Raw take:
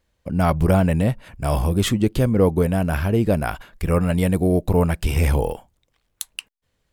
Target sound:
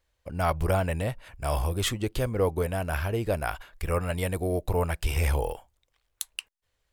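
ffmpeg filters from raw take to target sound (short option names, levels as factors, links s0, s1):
-af "equalizer=f=200:w=0.92:g=-13,volume=0.668"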